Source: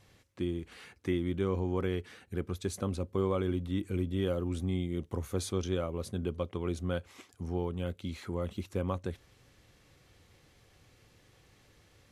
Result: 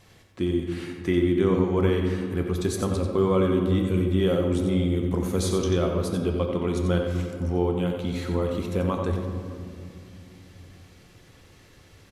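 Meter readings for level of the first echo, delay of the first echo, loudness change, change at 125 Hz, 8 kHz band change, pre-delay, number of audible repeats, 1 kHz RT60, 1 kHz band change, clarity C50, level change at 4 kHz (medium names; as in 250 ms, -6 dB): -8.0 dB, 90 ms, +9.5 dB, +9.0 dB, +8.0 dB, 3 ms, 1, 2.1 s, +9.5 dB, 3.5 dB, +9.0 dB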